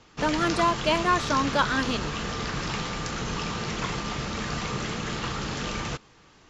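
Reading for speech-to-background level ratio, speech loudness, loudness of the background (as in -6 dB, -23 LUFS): 5.0 dB, -25.5 LUFS, -30.5 LUFS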